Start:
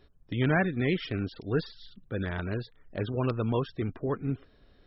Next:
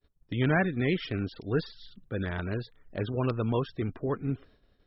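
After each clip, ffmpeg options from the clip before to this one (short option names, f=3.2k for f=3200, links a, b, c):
-af "agate=range=-33dB:threshold=-51dB:ratio=3:detection=peak"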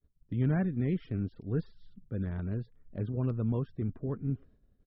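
-af "firequalizer=gain_entry='entry(220,0);entry(310,-6);entry(790,-12);entry(3500,-21)':delay=0.05:min_phase=1"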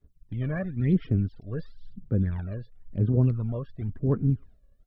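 -af "aphaser=in_gain=1:out_gain=1:delay=1.8:decay=0.73:speed=0.96:type=sinusoidal"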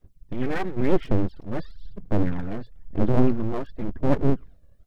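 -af "aeval=exprs='abs(val(0))':c=same,volume=6.5dB"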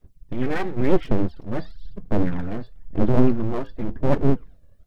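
-af "flanger=delay=4.6:depth=4.2:regen=-77:speed=0.94:shape=sinusoidal,volume=6.5dB"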